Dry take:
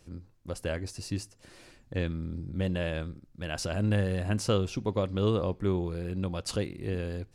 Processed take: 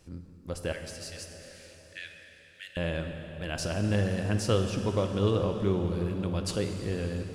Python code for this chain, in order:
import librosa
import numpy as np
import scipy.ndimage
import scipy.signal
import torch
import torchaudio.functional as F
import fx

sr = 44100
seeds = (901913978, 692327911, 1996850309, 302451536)

y = fx.steep_highpass(x, sr, hz=1500.0, slope=72, at=(0.72, 2.77))
y = fx.rev_plate(y, sr, seeds[0], rt60_s=4.5, hf_ratio=0.8, predelay_ms=0, drr_db=5.0)